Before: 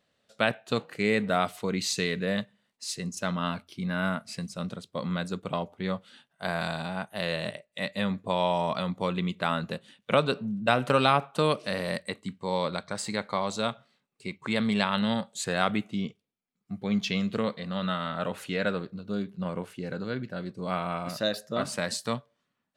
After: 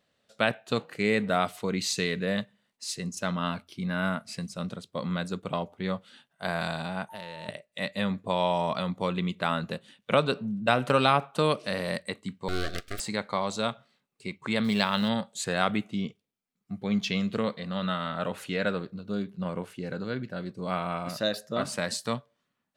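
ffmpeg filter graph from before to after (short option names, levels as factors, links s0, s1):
-filter_complex "[0:a]asettb=1/sr,asplit=3[s0][s1][s2];[s0]atrim=end=7.094[s3];[s1]atrim=start=7.09:end=7.49,asetpts=PTS-STARTPTS,afade=t=in:d=0.004:c=qsin,afade=t=out:st=0.396:d=0.004:c=qsin,acompressor=threshold=0.0158:ratio=10:attack=3.2:release=140:knee=1:detection=peak,aeval=exprs='val(0)+0.00631*sin(2*PI*900*n/s)':c=same[s4];[s2]atrim=start=7.486[s5];[s3][s4]acrossfade=d=0.004:c1=hsin:c2=qsin[s6];[s6][s5]acrossfade=d=0.004:c1=qsin:c2=hsin,asettb=1/sr,asplit=3[s7][s8][s9];[s7]atrim=end=12.484[s10];[s8]atrim=start=12.48:end=13,asetpts=PTS-STARTPTS,afade=t=in:d=0.004:c=qsin,afade=t=out:st=0.516:d=0.004:c=qsin,highshelf=f=9200:g=8.5,aeval=exprs='abs(val(0))':c=same,asuperstop=centerf=920:order=12:qfactor=2.2[s11];[s9]atrim=start=12.996[s12];[s10][s11]acrossfade=d=0.004:c1=hsin:c2=qsin[s13];[s13][s12]acrossfade=d=0.004:c1=qsin:c2=hsin,asettb=1/sr,asplit=3[s14][s15][s16];[s14]atrim=end=14.644[s17];[s15]atrim=start=14.64:end=15.09,asetpts=PTS-STARTPTS,afade=t=in:d=0.004:c=qsin,afade=t=out:st=0.446:d=0.004:c=qsin,acrusher=bits=8:mode=log:mix=0:aa=0.000001,equalizer=f=4900:w=2.6:g=7.5[s18];[s16]atrim=start=15.086[s19];[s17][s18]acrossfade=d=0.004:c1=hsin:c2=qsin[s20];[s20][s19]acrossfade=d=0.004:c1=qsin:c2=hsin"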